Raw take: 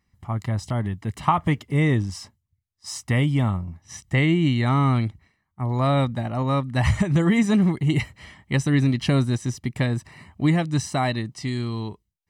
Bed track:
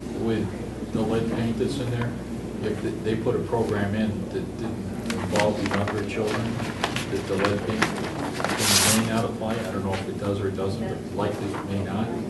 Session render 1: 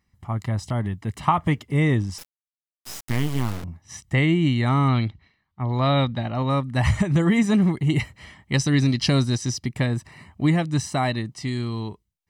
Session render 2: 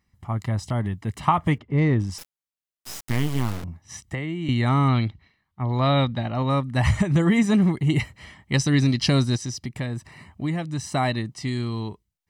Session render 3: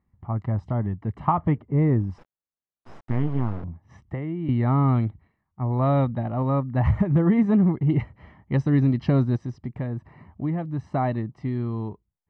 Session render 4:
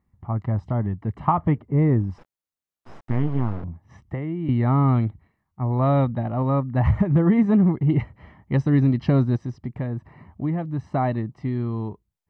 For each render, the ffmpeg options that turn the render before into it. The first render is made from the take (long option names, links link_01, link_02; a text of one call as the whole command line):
ffmpeg -i in.wav -filter_complex "[0:a]asettb=1/sr,asplit=3[link_01][link_02][link_03];[link_01]atrim=end=2.184[link_04];[link_02]atrim=start=2.18:end=3.64,asetpts=PTS-STARTPTS,afade=type=in:duration=0.004:curve=qsin,afade=type=out:start_time=1.456:duration=0.004:curve=qsin,acrusher=bits=3:dc=4:mix=0:aa=0.000001[link_05];[link_03]atrim=start=3.636[link_06];[link_04][link_05]acrossfade=duration=0.004:curve1=hsin:curve2=qsin[link_07];[link_07][link_06]acrossfade=duration=0.004:curve1=qsin:curve2=hsin,asettb=1/sr,asplit=3[link_08][link_09][link_10];[link_08]atrim=end=4.884[link_11];[link_09]atrim=start=4.88:end=6.5,asetpts=PTS-STARTPTS,afade=type=in:duration=0.004:curve=qsin,afade=type=out:start_time=1.616:duration=0.004:curve=qsin,lowpass=frequency=3900:width_type=q:width=2.1[link_12];[link_10]atrim=start=6.496[link_13];[link_11][link_12]acrossfade=duration=0.004:curve1=hsin:curve2=qsin[link_14];[link_14][link_13]acrossfade=duration=0.004:curve1=qsin:curve2=hsin,asettb=1/sr,asplit=3[link_15][link_16][link_17];[link_15]atrim=end=8.534[link_18];[link_16]atrim=start=8.53:end=9.66,asetpts=PTS-STARTPTS,afade=type=in:duration=0.004:curve=qsin,afade=type=out:start_time=1.126:duration=0.004:curve=qsin,equalizer=frequency=5000:width=1.7:gain=12.5[link_19];[link_17]atrim=start=9.656[link_20];[link_18][link_19]acrossfade=duration=0.004:curve1=hsin:curve2=qsin[link_21];[link_21][link_20]acrossfade=duration=0.004:curve1=qsin:curve2=hsin" out.wav
ffmpeg -i in.wav -filter_complex "[0:a]asettb=1/sr,asplit=3[link_01][link_02][link_03];[link_01]atrim=end=1.584[link_04];[link_02]atrim=start=1.58:end=2,asetpts=PTS-STARTPTS,afade=type=in:duration=0.004:curve=qsin,afade=type=out:start_time=0.416:duration=0.004:curve=qsin,adynamicsmooth=sensitivity=0.5:basefreq=2100[link_05];[link_03]atrim=start=1.996[link_06];[link_04][link_05]acrossfade=duration=0.004:curve1=hsin:curve2=qsin[link_07];[link_07][link_06]acrossfade=duration=0.004:curve1=qsin:curve2=hsin,asettb=1/sr,asplit=3[link_08][link_09][link_10];[link_08]atrim=end=4.054[link_11];[link_09]atrim=start=4.05:end=4.49,asetpts=PTS-STARTPTS,afade=type=in:duration=0.004:curve=qsin,afade=type=out:start_time=0.436:duration=0.004:curve=qsin,acrossover=split=310|1900[link_12][link_13][link_14];[link_12]acompressor=threshold=-32dB:ratio=4[link_15];[link_13]acompressor=threshold=-35dB:ratio=4[link_16];[link_14]acompressor=threshold=-43dB:ratio=4[link_17];[link_15][link_16][link_17]amix=inputs=3:normalize=0[link_18];[link_10]atrim=start=4.486[link_19];[link_11][link_18]acrossfade=duration=0.004:curve1=hsin:curve2=qsin[link_20];[link_20][link_19]acrossfade=duration=0.004:curve1=qsin:curve2=hsin,asettb=1/sr,asplit=3[link_21][link_22][link_23];[link_21]atrim=end=9.364[link_24];[link_22]atrim=start=9.36:end=10.92,asetpts=PTS-STARTPTS,afade=type=in:duration=0.004:curve=qsin,afade=type=out:start_time=1.556:duration=0.004:curve=qsin,acompressor=threshold=-34dB:ratio=1.5:attack=3.2:release=140:knee=1:detection=peak[link_25];[link_23]atrim=start=10.916[link_26];[link_24][link_25]acrossfade=duration=0.004:curve1=hsin:curve2=qsin[link_27];[link_27][link_26]acrossfade=duration=0.004:curve1=qsin:curve2=hsin" out.wav
ffmpeg -i in.wav -af "lowpass=1100" out.wav
ffmpeg -i in.wav -af "volume=1.5dB" out.wav